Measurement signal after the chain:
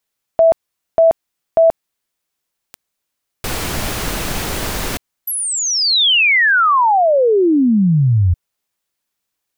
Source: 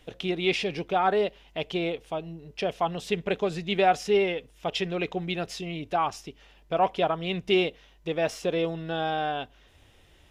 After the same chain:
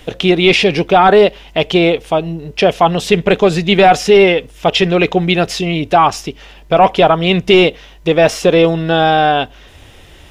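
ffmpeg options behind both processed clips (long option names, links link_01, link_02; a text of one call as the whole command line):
ffmpeg -i in.wav -filter_complex "[0:a]apsyclip=19.5dB,acrossover=split=4200[link_01][link_02];[link_02]acompressor=threshold=-19dB:ratio=4:attack=1:release=60[link_03];[link_01][link_03]amix=inputs=2:normalize=0,volume=-2dB" out.wav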